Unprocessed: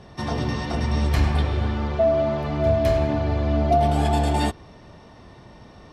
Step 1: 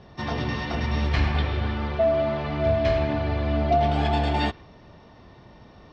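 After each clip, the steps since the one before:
low-pass filter 5,300 Hz 24 dB per octave
dynamic equaliser 2,300 Hz, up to +6 dB, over −41 dBFS, Q 0.71
level −3 dB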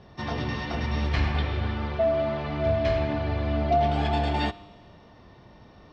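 tuned comb filter 100 Hz, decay 1.7 s, harmonics all, mix 50%
level +3.5 dB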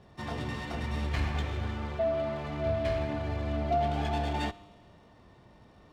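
windowed peak hold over 3 samples
level −5.5 dB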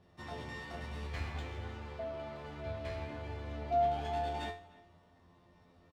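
tuned comb filter 87 Hz, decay 0.33 s, harmonics all, mix 90%
far-end echo of a speakerphone 300 ms, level −21 dB
level +1 dB

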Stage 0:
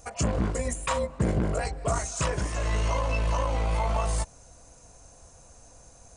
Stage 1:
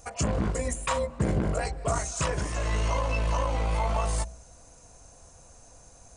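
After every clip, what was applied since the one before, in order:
hum removal 59.63 Hz, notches 11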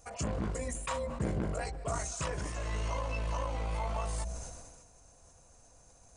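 level that may fall only so fast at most 38 dB per second
level −8 dB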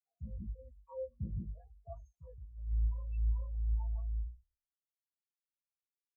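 every bin expanded away from the loudest bin 4 to 1
level −4 dB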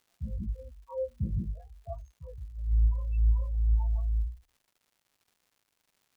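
surface crackle 240 per second −64 dBFS
level +8 dB

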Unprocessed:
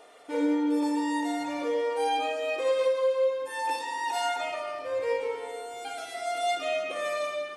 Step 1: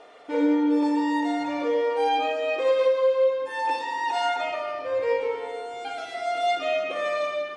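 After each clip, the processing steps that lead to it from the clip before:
high-frequency loss of the air 110 metres
level +4.5 dB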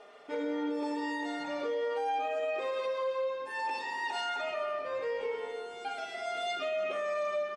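comb filter 4.9 ms, depth 58%
brickwall limiter −20.5 dBFS, peak gain reduction 7 dB
level −5.5 dB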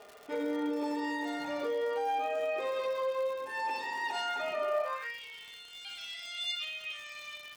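high-pass filter sweep 76 Hz → 3,100 Hz, 0:04.31–0:05.20
surface crackle 190 per second −42 dBFS

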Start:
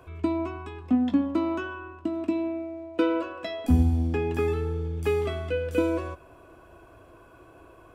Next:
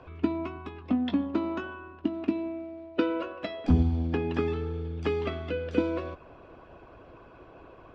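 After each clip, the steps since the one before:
low-pass filter 4,600 Hz 24 dB per octave
harmonic and percussive parts rebalanced harmonic −11 dB
level +6.5 dB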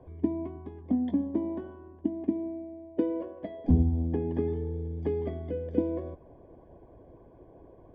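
moving average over 33 samples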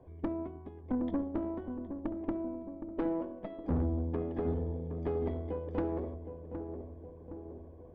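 tube saturation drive 27 dB, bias 0.75
feedback echo with a low-pass in the loop 766 ms, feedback 61%, low-pass 950 Hz, level −7.5 dB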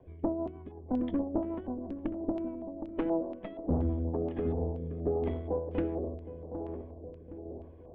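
rotating-speaker cabinet horn 6.3 Hz, later 0.85 Hz, at 0:03.92
auto-filter low-pass square 2.1 Hz 760–2,900 Hz
level +2.5 dB

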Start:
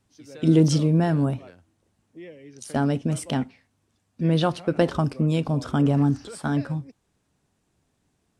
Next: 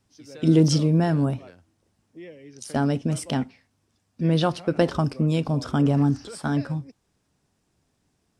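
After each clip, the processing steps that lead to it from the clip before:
parametric band 5,200 Hz +5 dB 0.31 octaves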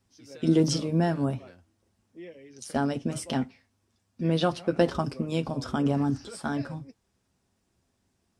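notch comb filter 150 Hz
level −1.5 dB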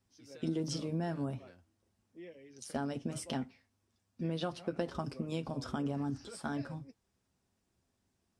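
downward compressor 4 to 1, threshold −26 dBFS, peak gain reduction 8.5 dB
level −6 dB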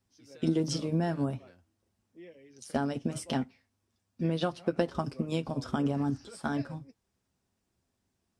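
expander for the loud parts 1.5 to 1, over −47 dBFS
level +8 dB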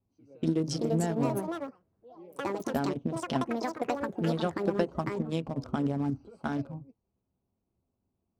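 adaptive Wiener filter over 25 samples
delay with pitch and tempo change per echo 508 ms, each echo +6 semitones, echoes 2

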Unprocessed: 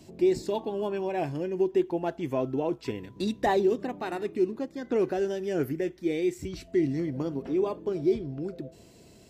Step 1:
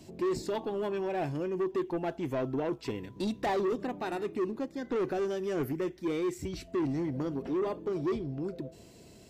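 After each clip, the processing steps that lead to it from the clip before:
soft clipping −26 dBFS, distortion −10 dB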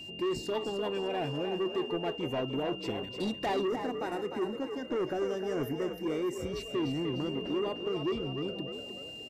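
echo with shifted repeats 301 ms, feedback 43%, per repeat +57 Hz, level −7.5 dB
steady tone 2,800 Hz −41 dBFS
gain on a spectral selection 0:03.67–0:06.56, 2,300–4,900 Hz −7 dB
level −1.5 dB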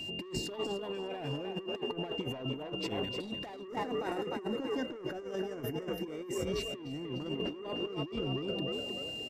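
compressor whose output falls as the input rises −36 dBFS, ratio −0.5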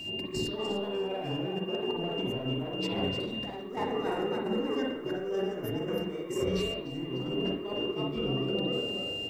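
background noise blue −76 dBFS
convolution reverb, pre-delay 43 ms, DRR −0.5 dB

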